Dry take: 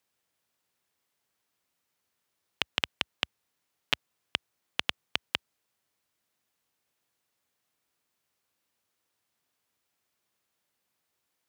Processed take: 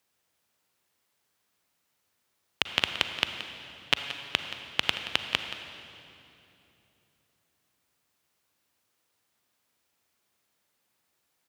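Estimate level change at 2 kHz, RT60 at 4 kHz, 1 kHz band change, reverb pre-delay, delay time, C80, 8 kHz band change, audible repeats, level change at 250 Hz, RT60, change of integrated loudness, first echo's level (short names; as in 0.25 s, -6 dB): +4.5 dB, 2.5 s, +4.5 dB, 36 ms, 0.176 s, 7.5 dB, +4.5 dB, 1, +4.5 dB, 3.0 s, +3.5 dB, -14.0 dB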